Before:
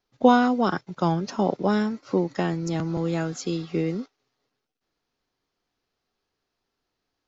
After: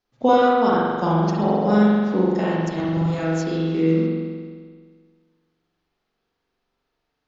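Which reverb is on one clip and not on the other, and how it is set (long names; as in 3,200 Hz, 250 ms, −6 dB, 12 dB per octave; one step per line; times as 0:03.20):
spring reverb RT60 1.7 s, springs 43 ms, chirp 25 ms, DRR −6 dB
level −2.5 dB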